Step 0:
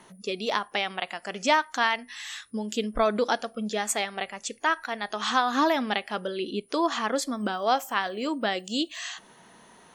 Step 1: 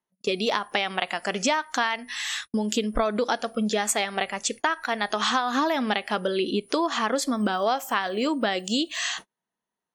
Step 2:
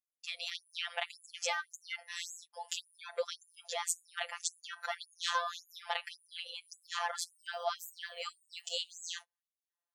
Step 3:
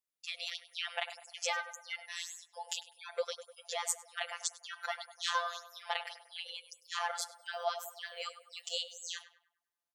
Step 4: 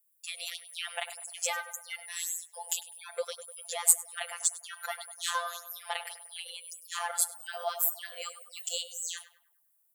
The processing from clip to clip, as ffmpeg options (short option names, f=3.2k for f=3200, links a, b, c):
-af "agate=range=-43dB:threshold=-43dB:ratio=16:detection=peak,acompressor=threshold=-29dB:ratio=6,volume=8dB"
-af "afftfilt=real='hypot(re,im)*cos(PI*b)':imag='0':win_size=1024:overlap=0.75,aeval=exprs='0.447*(cos(1*acos(clip(val(0)/0.447,-1,1)))-cos(1*PI/2))+0.00282*(cos(8*acos(clip(val(0)/0.447,-1,1)))-cos(8*PI/2))':c=same,afftfilt=real='re*gte(b*sr/1024,430*pow(6700/430,0.5+0.5*sin(2*PI*1.8*pts/sr)))':imag='im*gte(b*sr/1024,430*pow(6700/430,0.5+0.5*sin(2*PI*1.8*pts/sr)))':win_size=1024:overlap=0.75,volume=-5dB"
-filter_complex "[0:a]asplit=2[a][b];[b]adelay=100,lowpass=f=1.7k:p=1,volume=-10dB,asplit=2[c][d];[d]adelay=100,lowpass=f=1.7k:p=1,volume=0.51,asplit=2[e][f];[f]adelay=100,lowpass=f=1.7k:p=1,volume=0.51,asplit=2[g][h];[h]adelay=100,lowpass=f=1.7k:p=1,volume=0.51,asplit=2[i][j];[j]adelay=100,lowpass=f=1.7k:p=1,volume=0.51,asplit=2[k][l];[l]adelay=100,lowpass=f=1.7k:p=1,volume=0.51[m];[a][c][e][g][i][k][m]amix=inputs=7:normalize=0"
-filter_complex "[0:a]aexciter=amount=12:drive=3.5:freq=8k,asplit=2[a][b];[b]asoftclip=type=tanh:threshold=-14dB,volume=-5dB[c];[a][c]amix=inputs=2:normalize=0,volume=-3dB"